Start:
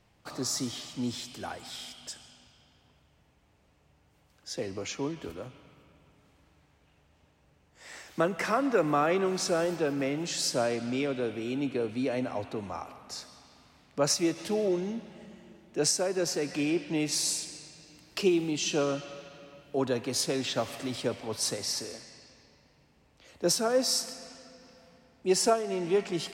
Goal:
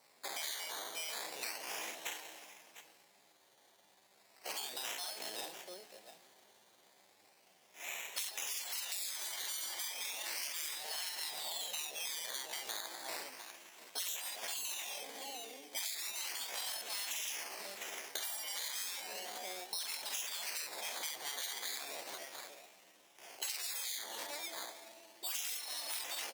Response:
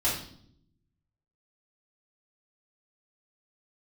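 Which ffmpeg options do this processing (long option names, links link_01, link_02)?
-af "acrusher=samples=17:mix=1:aa=0.000001:lfo=1:lforange=10.2:lforate=0.34,adynamicequalizer=threshold=0.00224:dfrequency=2000:dqfactor=7.4:tfrequency=2000:tqfactor=7.4:attack=5:release=100:ratio=0.375:range=2.5:mode=cutabove:tftype=bell,aecho=1:1:49|700:0.668|0.15,asetrate=57191,aresample=44100,atempo=0.771105,afftfilt=real='re*lt(hypot(re,im),0.0562)':imag='im*lt(hypot(re,im),0.0562)':win_size=1024:overlap=0.75,highpass=800,equalizer=frequency=1300:width_type=o:width=1.1:gain=-13,acompressor=threshold=-45dB:ratio=6,volume=8.5dB"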